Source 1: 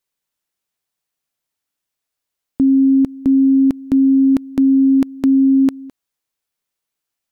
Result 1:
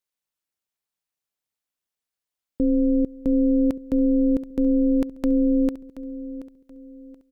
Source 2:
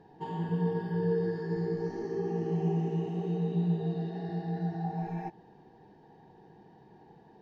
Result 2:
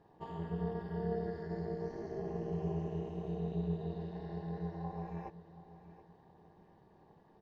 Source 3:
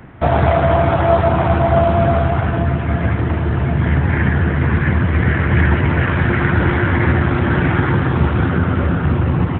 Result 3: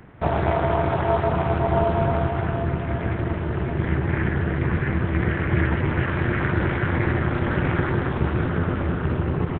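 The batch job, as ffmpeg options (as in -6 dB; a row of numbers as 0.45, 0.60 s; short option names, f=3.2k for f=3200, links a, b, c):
-filter_complex "[0:a]tremolo=f=250:d=0.824,asplit=2[a][b];[b]aecho=0:1:728|1456|2184:0.178|0.0587|0.0194[c];[a][c]amix=inputs=2:normalize=0,volume=-4dB"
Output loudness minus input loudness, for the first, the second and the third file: -7.5, -7.5, -7.5 LU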